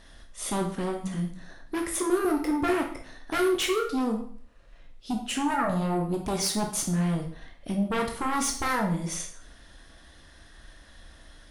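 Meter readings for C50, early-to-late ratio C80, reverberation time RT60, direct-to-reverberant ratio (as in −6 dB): 7.0 dB, 11.0 dB, 0.50 s, 1.5 dB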